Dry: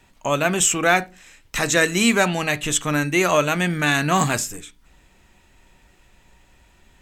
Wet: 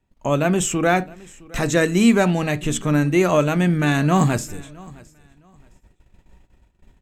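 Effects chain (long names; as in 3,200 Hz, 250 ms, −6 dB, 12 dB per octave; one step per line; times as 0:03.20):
noise gate −52 dBFS, range −18 dB
tilt shelving filter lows +6.5 dB, about 710 Hz
on a send: repeating echo 664 ms, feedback 23%, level −23 dB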